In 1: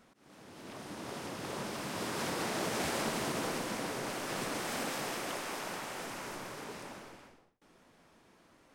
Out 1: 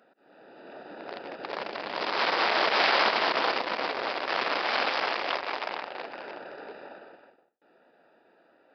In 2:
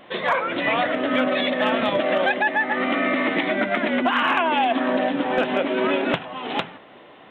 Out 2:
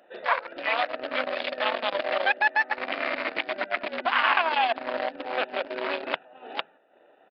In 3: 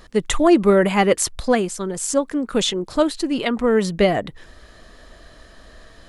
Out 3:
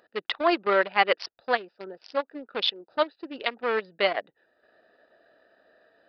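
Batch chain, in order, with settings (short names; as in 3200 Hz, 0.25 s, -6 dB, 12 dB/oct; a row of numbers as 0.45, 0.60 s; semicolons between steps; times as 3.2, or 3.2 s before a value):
Wiener smoothing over 41 samples; HPF 830 Hz 12 dB/oct; transient shaper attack -3 dB, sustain -7 dB; downsampling 11025 Hz; match loudness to -27 LUFS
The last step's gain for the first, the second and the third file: +18.5, +4.0, +3.5 dB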